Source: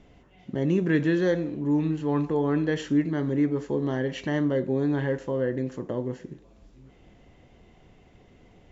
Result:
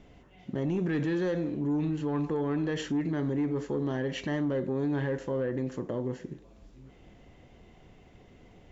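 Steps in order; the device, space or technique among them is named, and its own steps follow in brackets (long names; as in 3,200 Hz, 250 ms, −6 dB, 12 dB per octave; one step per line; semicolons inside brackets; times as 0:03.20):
soft clipper into limiter (soft clipping −17.5 dBFS, distortion −19 dB; brickwall limiter −23.5 dBFS, peak gain reduction 5.5 dB)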